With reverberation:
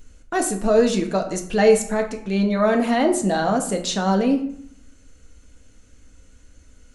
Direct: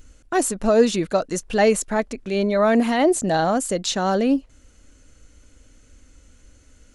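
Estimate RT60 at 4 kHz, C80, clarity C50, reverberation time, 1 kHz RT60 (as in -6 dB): 0.40 s, 13.5 dB, 10.0 dB, 0.65 s, 0.65 s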